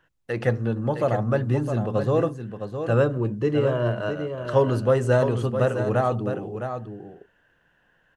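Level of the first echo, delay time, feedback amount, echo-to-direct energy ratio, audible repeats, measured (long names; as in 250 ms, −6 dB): −8.0 dB, 661 ms, repeats not evenly spaced, −8.0 dB, 1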